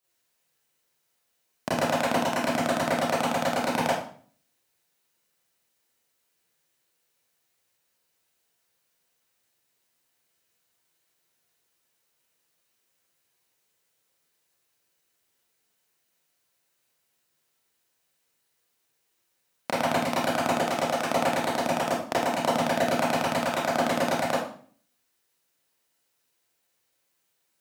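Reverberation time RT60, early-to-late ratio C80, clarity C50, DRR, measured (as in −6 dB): 0.50 s, 6.0 dB, 0.5 dB, −8.5 dB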